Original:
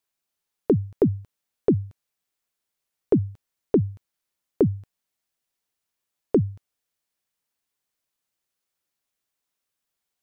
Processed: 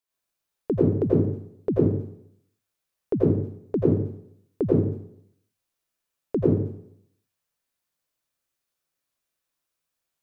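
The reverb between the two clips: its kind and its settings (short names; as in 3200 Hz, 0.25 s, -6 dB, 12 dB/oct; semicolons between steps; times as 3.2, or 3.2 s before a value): plate-style reverb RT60 0.69 s, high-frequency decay 0.75×, pre-delay 75 ms, DRR -6.5 dB; gain -6.5 dB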